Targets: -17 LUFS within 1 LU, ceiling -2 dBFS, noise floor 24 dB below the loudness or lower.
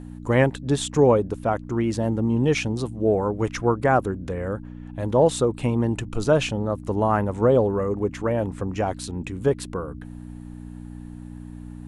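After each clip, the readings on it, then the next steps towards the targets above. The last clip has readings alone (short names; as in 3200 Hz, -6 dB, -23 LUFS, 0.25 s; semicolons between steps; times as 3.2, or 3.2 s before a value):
hum 60 Hz; harmonics up to 300 Hz; hum level -35 dBFS; loudness -23.0 LUFS; peak -5.5 dBFS; loudness target -17.0 LUFS
-> de-hum 60 Hz, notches 5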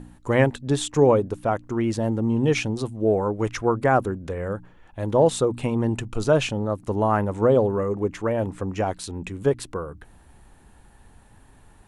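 hum none; loudness -23.5 LUFS; peak -5.0 dBFS; loudness target -17.0 LUFS
-> gain +6.5 dB; limiter -2 dBFS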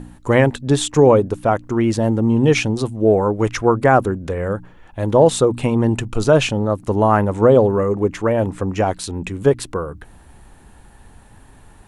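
loudness -17.5 LUFS; peak -2.0 dBFS; noise floor -46 dBFS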